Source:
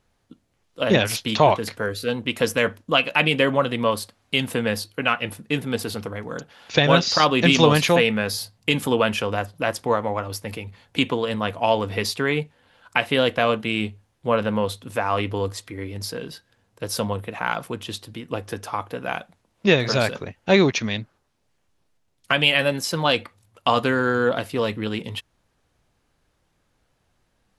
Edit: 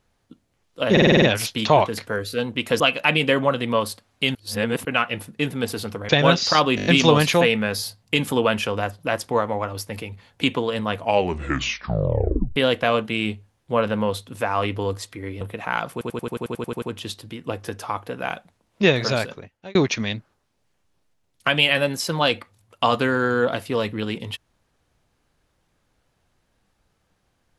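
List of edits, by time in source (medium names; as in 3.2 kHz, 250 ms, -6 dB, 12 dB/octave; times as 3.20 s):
0.92 s: stutter 0.05 s, 7 plays
2.50–2.91 s: delete
4.46–4.96 s: reverse
6.20–6.74 s: delete
7.41 s: stutter 0.02 s, 6 plays
11.57 s: tape stop 1.54 s
15.96–17.15 s: delete
17.66 s: stutter 0.09 s, 11 plays
19.85–20.59 s: fade out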